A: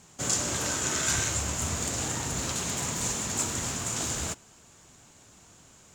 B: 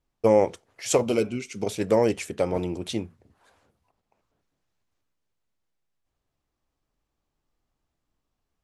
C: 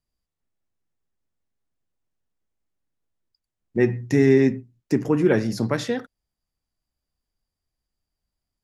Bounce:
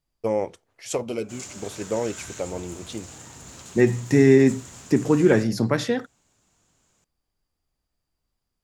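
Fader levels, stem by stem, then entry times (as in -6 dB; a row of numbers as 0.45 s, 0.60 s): -12.0 dB, -5.5 dB, +1.5 dB; 1.10 s, 0.00 s, 0.00 s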